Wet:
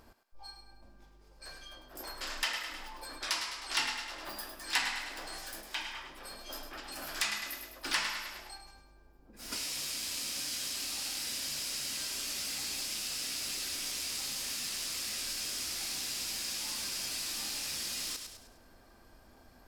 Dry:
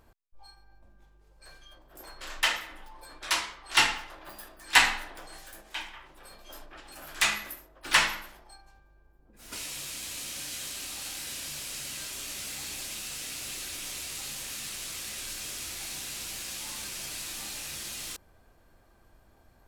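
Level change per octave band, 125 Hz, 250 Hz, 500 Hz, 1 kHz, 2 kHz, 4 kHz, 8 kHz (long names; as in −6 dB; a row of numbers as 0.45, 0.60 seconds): −5.5, −2.0, −3.5, −8.0, −8.0, −2.5, −1.5 decibels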